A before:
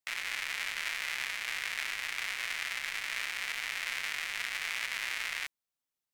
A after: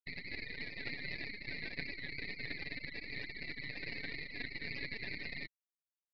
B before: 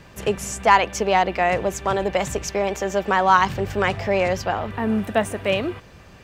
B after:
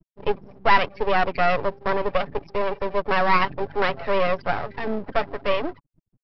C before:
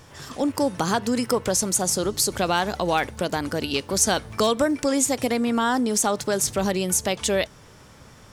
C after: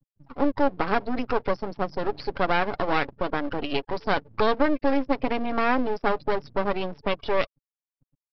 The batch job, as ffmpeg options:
-filter_complex "[0:a]aeval=exprs='val(0)+0.00251*sin(2*PI*830*n/s)':c=same,aecho=1:1:7.1:0.38,afftfilt=real='re*gte(hypot(re,im),0.0501)':imag='im*gte(hypot(re,im),0.0501)':win_size=1024:overlap=0.75,asplit=2[s0][s1];[s1]aeval=exprs='0.224*(abs(mod(val(0)/0.224+3,4)-2)-1)':c=same,volume=0.376[s2];[s0][s2]amix=inputs=2:normalize=0,acrossover=split=180 2900:gain=0.141 1 0.141[s3][s4][s5];[s3][s4][s5]amix=inputs=3:normalize=0,aresample=11025,aeval=exprs='max(val(0),0)':c=same,aresample=44100"

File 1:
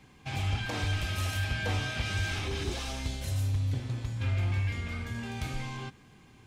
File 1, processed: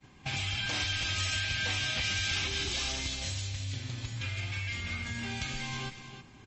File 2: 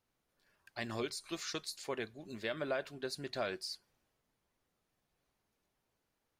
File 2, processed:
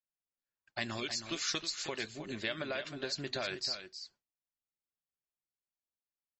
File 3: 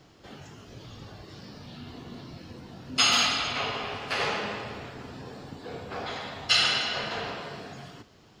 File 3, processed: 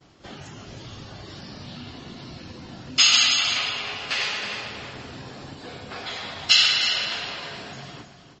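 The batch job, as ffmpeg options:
-filter_complex "[0:a]agate=range=0.0224:threshold=0.00282:ratio=3:detection=peak,acrossover=split=1900[s0][s1];[s0]acompressor=threshold=0.00708:ratio=8[s2];[s2][s1]amix=inputs=2:normalize=0,bandreject=f=460:w=12,aecho=1:1:316:0.316,volume=2.24" -ar 32000 -c:a libmp3lame -b:a 32k

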